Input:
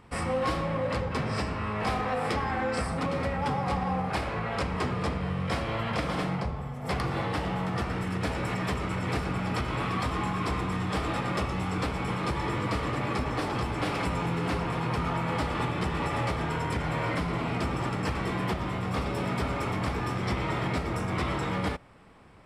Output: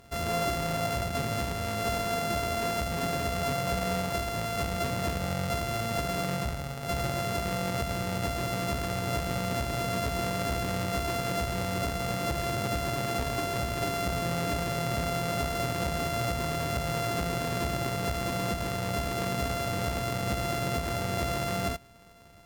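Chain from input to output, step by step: sample sorter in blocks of 64 samples; one-sided clip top -26.5 dBFS

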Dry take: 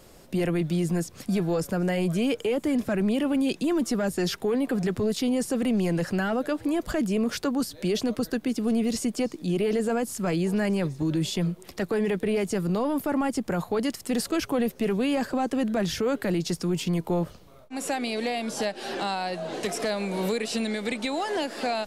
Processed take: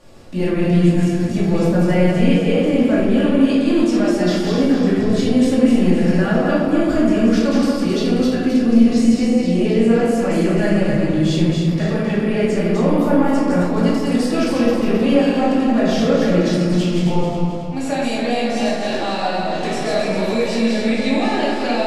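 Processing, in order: regenerating reverse delay 0.133 s, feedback 67%, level -3 dB; air absorption 55 m; shoebox room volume 330 m³, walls mixed, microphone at 2.4 m; gain -1 dB

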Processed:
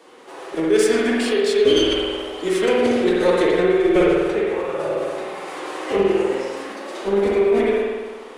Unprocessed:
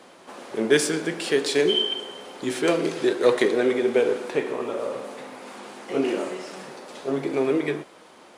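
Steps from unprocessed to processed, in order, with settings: recorder AGC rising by 5.5 dB/s; added harmonics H 2 -33 dB, 6 -30 dB, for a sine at -5.5 dBFS; formant-preserving pitch shift +6.5 st; spring tank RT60 1.4 s, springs 50 ms, chirp 55 ms, DRR -3 dB

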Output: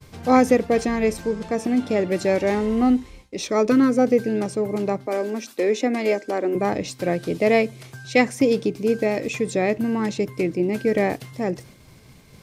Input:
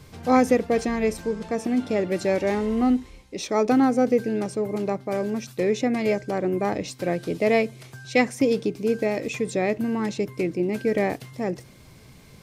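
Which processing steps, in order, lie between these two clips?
5.06–6.55 steep high-pass 230 Hz 36 dB/oct; expander -45 dBFS; 3.48–3.99 Butterworth band-stop 780 Hz, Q 4.7; gain +2.5 dB

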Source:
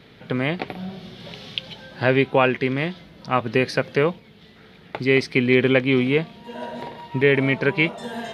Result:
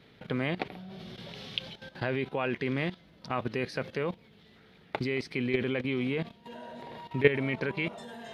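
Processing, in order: level quantiser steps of 14 dB; gain -2 dB

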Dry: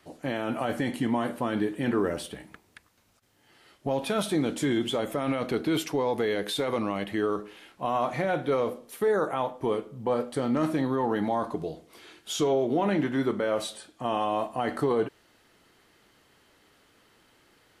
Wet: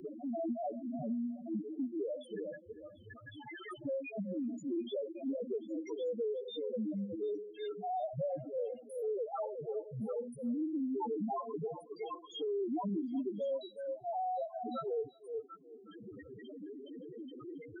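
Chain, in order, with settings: auto swell 0.236 s; loudest bins only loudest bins 1; on a send: delay with a stepping band-pass 0.368 s, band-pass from 500 Hz, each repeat 1.4 oct, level -12 dB; on the sum: three-band squash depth 100%; gain +1 dB

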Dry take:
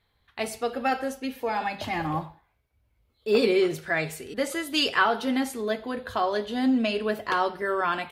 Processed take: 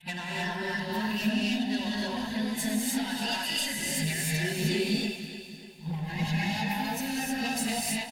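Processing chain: whole clip reversed; gate -41 dBFS, range -9 dB; band shelf 570 Hz -13.5 dB 1.1 oct; comb 1.1 ms, depth 54%; compressor 6:1, threshold -32 dBFS, peak gain reduction 15 dB; rotary speaker horn 8 Hz; soft clip -32.5 dBFS, distortion -16 dB; fixed phaser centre 310 Hz, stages 6; delay with a stepping band-pass 0.103 s, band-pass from 870 Hz, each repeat 0.7 oct, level -6 dB; non-linear reverb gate 0.34 s rising, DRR -4.5 dB; lo-fi delay 0.296 s, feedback 55%, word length 11-bit, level -13 dB; gain +8 dB

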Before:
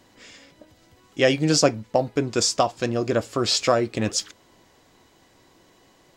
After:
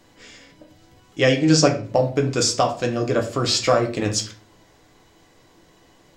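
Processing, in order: 1.23–1.85 LPF 8600 Hz 24 dB/oct; reverb RT60 0.45 s, pre-delay 6 ms, DRR 2.5 dB

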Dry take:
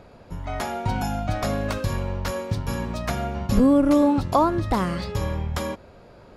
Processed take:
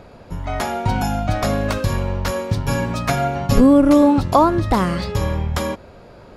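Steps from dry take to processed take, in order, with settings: 2.65–3.61 comb 7.2 ms, depth 72%; gain +5.5 dB

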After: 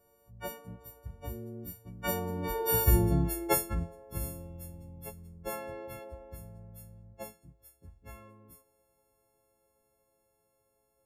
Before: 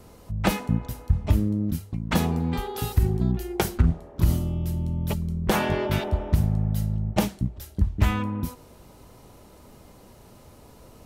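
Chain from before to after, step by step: frequency quantiser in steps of 4 st; Doppler pass-by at 2.99, 11 m/s, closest 2.5 m; graphic EQ 250/500/4000/8000 Hz -5/+10/-9/-3 dB

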